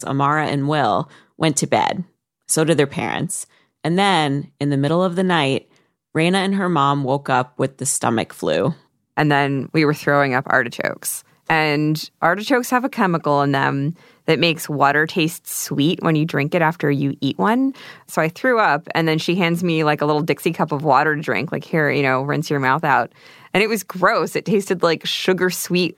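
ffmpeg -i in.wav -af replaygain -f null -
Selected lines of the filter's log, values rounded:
track_gain = -0.6 dB
track_peak = 0.582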